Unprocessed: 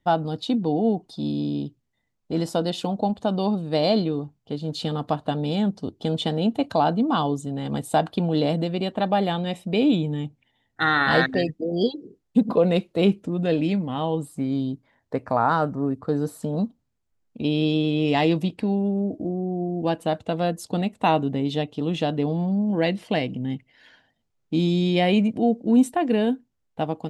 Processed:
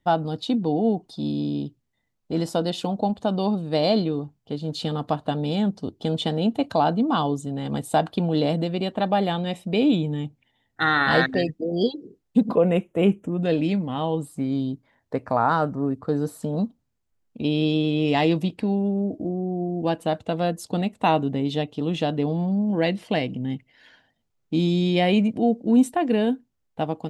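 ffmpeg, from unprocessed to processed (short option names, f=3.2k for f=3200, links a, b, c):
-filter_complex "[0:a]asettb=1/sr,asplit=3[a][b][c];[a]atrim=end=12.554[d];[b]atrim=start=12.55:end=13.43,asetpts=PTS-STARTPTS,afade=t=in:d=0.004:c=qsin,afade=t=out:st=0.876:d=0.004:c=qsin,asuperstop=centerf=4400:order=4:qfactor=1.3[e];[c]atrim=start=13.426[f];[d][e]acrossfade=d=0.004:c1=hsin:c2=qsin[g];[g][f]acrossfade=d=0.004:c1=qsin:c2=hsin"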